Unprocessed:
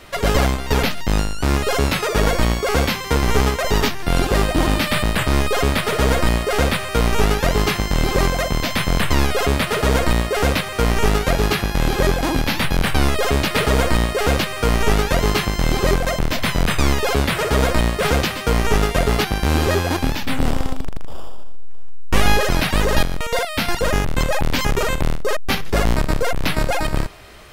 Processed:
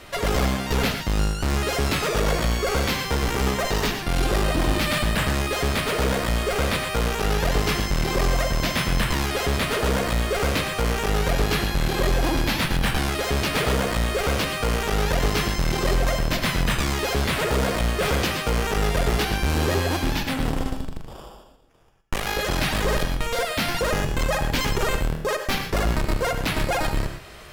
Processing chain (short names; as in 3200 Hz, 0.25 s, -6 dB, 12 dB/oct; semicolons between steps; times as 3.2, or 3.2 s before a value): tube stage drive 18 dB, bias 0.35; non-linear reverb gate 0.14 s rising, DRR 6.5 dB